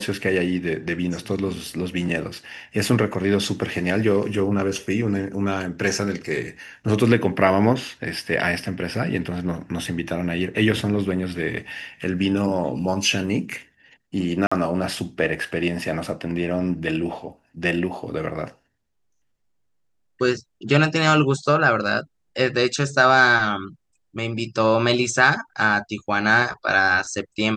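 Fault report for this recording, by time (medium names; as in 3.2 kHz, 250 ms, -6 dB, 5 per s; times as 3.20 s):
14.47–14.52 s: dropout 45 ms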